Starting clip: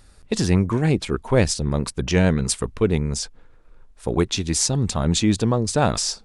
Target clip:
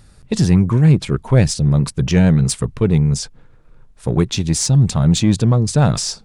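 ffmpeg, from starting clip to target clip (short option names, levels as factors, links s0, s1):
-filter_complex "[0:a]equalizer=f=140:t=o:w=1:g=11.5,asplit=2[s0][s1];[s1]asoftclip=type=tanh:threshold=0.15,volume=0.596[s2];[s0][s2]amix=inputs=2:normalize=0,volume=0.794"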